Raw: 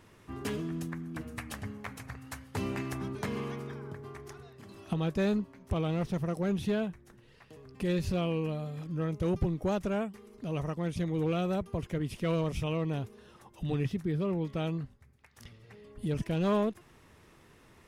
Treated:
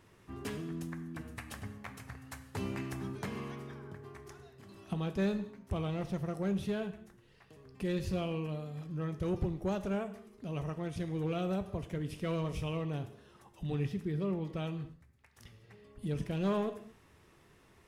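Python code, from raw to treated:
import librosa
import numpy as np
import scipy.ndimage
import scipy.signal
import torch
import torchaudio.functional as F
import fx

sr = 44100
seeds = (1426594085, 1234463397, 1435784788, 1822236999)

y = fx.rev_gated(x, sr, seeds[0], gate_ms=260, shape='falling', drr_db=9.0)
y = F.gain(torch.from_numpy(y), -4.5).numpy()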